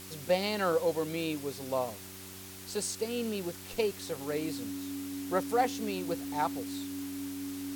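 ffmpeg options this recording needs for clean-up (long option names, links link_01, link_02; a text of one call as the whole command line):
ffmpeg -i in.wav -af "adeclick=threshold=4,bandreject=frequency=94.8:width_type=h:width=4,bandreject=frequency=189.6:width_type=h:width=4,bandreject=frequency=284.4:width_type=h:width=4,bandreject=frequency=379.2:width_type=h:width=4,bandreject=frequency=280:width=30,afftdn=noise_reduction=30:noise_floor=-46" out.wav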